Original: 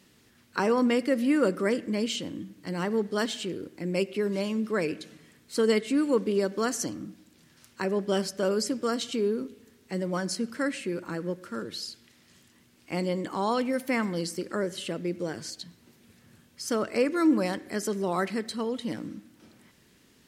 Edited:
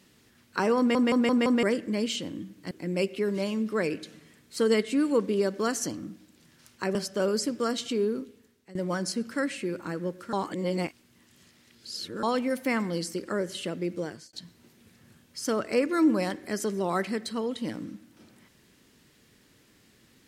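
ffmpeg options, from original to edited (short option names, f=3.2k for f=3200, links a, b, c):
-filter_complex "[0:a]asplit=12[a][b][c][d][e][f][g][h][i][j][k][l];[a]atrim=end=0.952[m];[b]atrim=start=0.778:end=0.952[n];[c]atrim=start=0.778:end=0.952[o];[d]atrim=start=0.778:end=0.952[p];[e]atrim=start=0.778:end=0.952[q];[f]atrim=start=1.628:end=2.712[r];[g]atrim=start=3.688:end=7.932[s];[h]atrim=start=8.178:end=9.98,asetpts=PTS-STARTPTS,afade=t=out:st=1.202:d=0.6:silence=0.105925[t];[i]atrim=start=9.98:end=11.562,asetpts=PTS-STARTPTS,afade=t=in:d=0.004:c=hsin:silence=0.105925[u];[j]atrim=start=11.558:end=13.462,asetpts=PTS-STARTPTS,areverse[v];[k]atrim=start=13.458:end=15.56,asetpts=PTS-STARTPTS,afade=t=out:st=1.772:d=0.33[w];[l]atrim=start=15.56,asetpts=PTS-STARTPTS,afade=t=in:d=0.004:c=hsin[x];[m][n]acrossfade=d=0.004:c1=hsin:c2=hsin[y];[y][o]acrossfade=d=0.004:c1=hsin:c2=hsin[z];[z][p]acrossfade=d=0.004:c1=hsin:c2=hsin[aa];[aa][q]acrossfade=d=0.004:c1=hsin:c2=hsin[ab];[ab][r]acrossfade=d=0.004:c1=hsin:c2=hsin[ac];[ac][s]acrossfade=d=0.004:c1=hsin:c2=hsin[ad];[t][u]concat=n=2:v=0:a=1[ae];[ad][ae]acrossfade=d=0.004:c1=hsin:c2=hsin[af];[af][v]acrossfade=d=0.004:c1=hsin:c2=hsin[ag];[w][x]concat=n=2:v=0:a=1[ah];[ag][ah]acrossfade=d=0.004:c1=hsin:c2=hsin"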